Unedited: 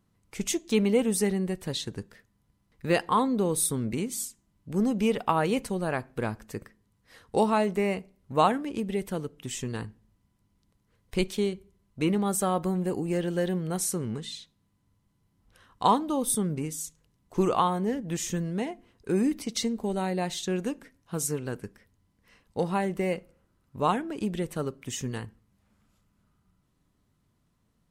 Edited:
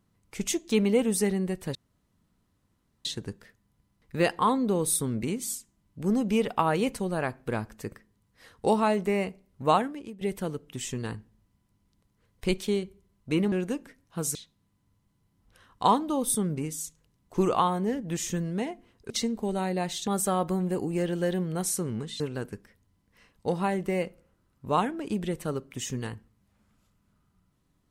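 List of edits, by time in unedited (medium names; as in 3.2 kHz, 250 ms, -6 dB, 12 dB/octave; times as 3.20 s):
1.75 s: insert room tone 1.30 s
8.40–8.91 s: fade out linear, to -18.5 dB
12.22–14.35 s: swap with 20.48–21.31 s
19.10–19.51 s: delete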